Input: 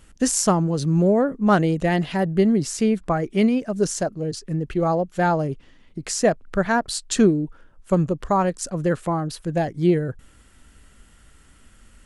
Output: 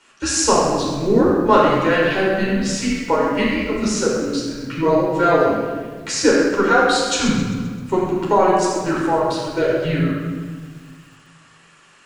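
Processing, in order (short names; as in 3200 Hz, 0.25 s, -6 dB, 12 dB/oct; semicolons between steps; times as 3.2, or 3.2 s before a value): weighting filter A; frequency shift -190 Hz; three-band isolator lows -16 dB, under 160 Hz, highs -13 dB, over 7800 Hz; reverb RT60 1.4 s, pre-delay 9 ms, DRR -5.5 dB; lo-fi delay 0.13 s, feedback 55%, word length 7-bit, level -14 dB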